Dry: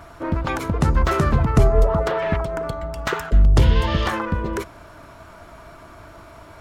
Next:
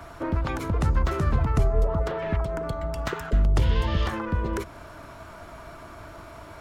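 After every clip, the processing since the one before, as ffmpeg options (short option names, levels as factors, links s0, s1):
-filter_complex "[0:a]acrossover=split=110|360[s0][s1][s2];[s0]acompressor=threshold=0.112:ratio=4[s3];[s1]acompressor=threshold=0.0251:ratio=4[s4];[s2]acompressor=threshold=0.0282:ratio=4[s5];[s3][s4][s5]amix=inputs=3:normalize=0"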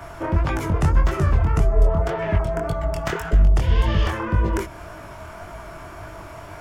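-af "alimiter=limit=0.2:level=0:latency=1:release=445,flanger=delay=18.5:depth=7.1:speed=1.8,equalizer=f=250:t=o:w=0.33:g=-7,equalizer=f=500:t=o:w=0.33:g=-3,equalizer=f=1250:t=o:w=0.33:g=-3,equalizer=f=4000:t=o:w=0.33:g=-7,volume=2.82"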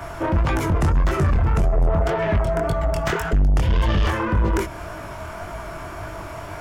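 -af "asoftclip=type=tanh:threshold=0.126,volume=1.68"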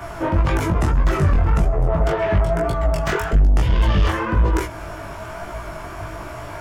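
-af "flanger=delay=16:depth=5.3:speed=1.1,volume=1.58"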